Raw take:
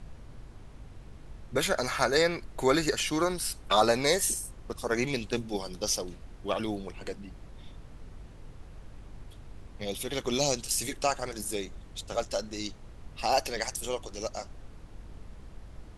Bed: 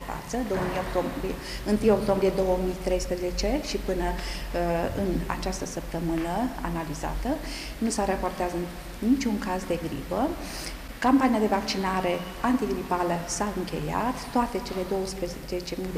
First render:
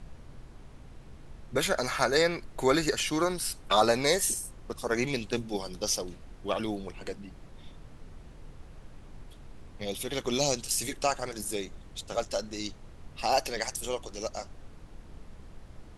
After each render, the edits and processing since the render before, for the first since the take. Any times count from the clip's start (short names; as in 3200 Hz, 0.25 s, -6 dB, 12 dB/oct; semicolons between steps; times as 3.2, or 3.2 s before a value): de-hum 50 Hz, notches 2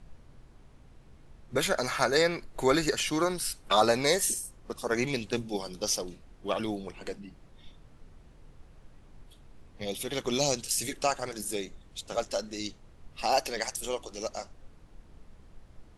noise print and reduce 6 dB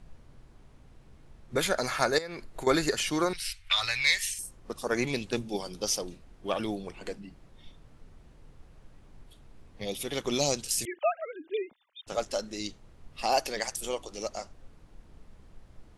2.18–2.67 compressor 16:1, threshold -33 dBFS; 3.33–4.39 EQ curve 100 Hz 0 dB, 210 Hz -26 dB, 380 Hz -29 dB, 930 Hz -13 dB, 1400 Hz -5 dB, 2200 Hz +10 dB, 3200 Hz +6 dB, 8200 Hz -6 dB; 10.85–12.07 sine-wave speech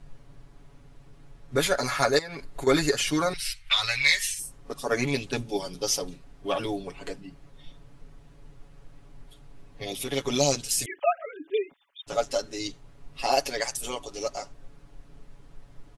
comb 7.1 ms, depth 100%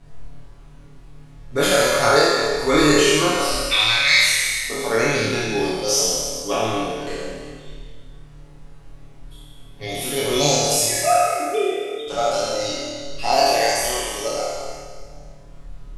spectral trails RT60 1.89 s; flutter echo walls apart 4.6 m, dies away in 0.59 s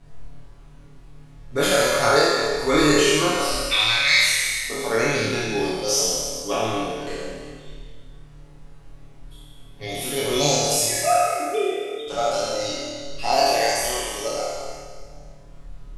gain -2 dB